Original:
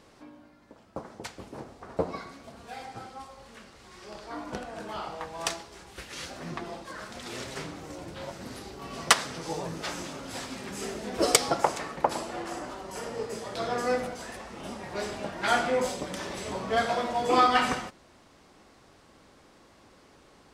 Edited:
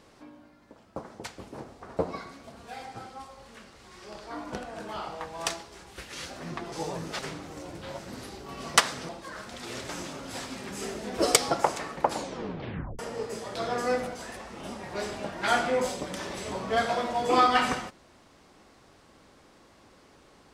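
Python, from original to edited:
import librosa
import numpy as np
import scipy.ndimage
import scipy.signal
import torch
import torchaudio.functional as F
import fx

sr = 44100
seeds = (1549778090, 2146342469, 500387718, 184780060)

y = fx.edit(x, sr, fx.swap(start_s=6.72, length_s=0.8, other_s=9.42, other_length_s=0.47),
    fx.tape_stop(start_s=12.1, length_s=0.89), tone=tone)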